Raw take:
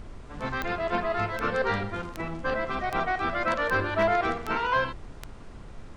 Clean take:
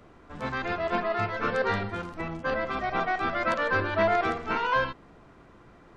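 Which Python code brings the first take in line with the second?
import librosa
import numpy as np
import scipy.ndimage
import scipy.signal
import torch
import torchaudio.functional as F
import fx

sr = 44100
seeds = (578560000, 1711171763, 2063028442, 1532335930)

y = fx.fix_declip(x, sr, threshold_db=-14.5)
y = fx.fix_declick_ar(y, sr, threshold=10.0)
y = fx.noise_reduce(y, sr, print_start_s=5.27, print_end_s=5.77, reduce_db=11.0)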